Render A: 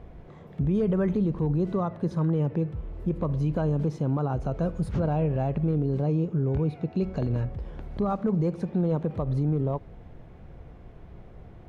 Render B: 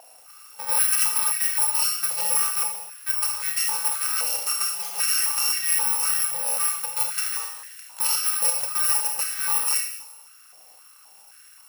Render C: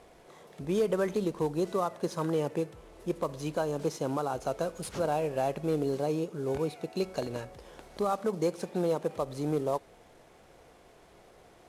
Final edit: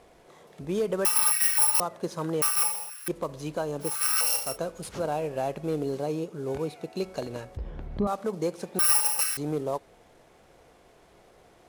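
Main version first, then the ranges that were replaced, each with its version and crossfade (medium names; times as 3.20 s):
C
1.05–1.80 s: from B
2.42–3.08 s: from B
3.92–4.46 s: from B, crossfade 0.24 s
7.57–8.07 s: from A
8.79–9.37 s: from B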